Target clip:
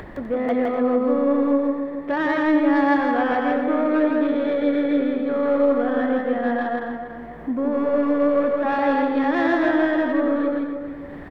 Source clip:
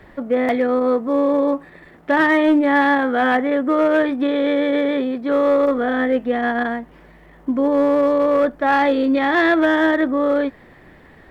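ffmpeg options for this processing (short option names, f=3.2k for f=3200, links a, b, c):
-filter_complex "[0:a]asoftclip=type=tanh:threshold=-12dB,highshelf=f=2.1k:g=-9.5,asplit=2[a][b];[b]adelay=283,lowpass=f=2k:p=1,volume=-7.5dB,asplit=2[c][d];[d]adelay=283,lowpass=f=2k:p=1,volume=0.27,asplit=2[e][f];[f]adelay=283,lowpass=f=2k:p=1,volume=0.27[g];[c][e][g]amix=inputs=3:normalize=0[h];[a][h]amix=inputs=2:normalize=0,acompressor=mode=upward:threshold=-24dB:ratio=2.5,asplit=2[i][j];[j]aecho=0:1:163.3|250.7:0.794|0.316[k];[i][k]amix=inputs=2:normalize=0,volume=-3.5dB"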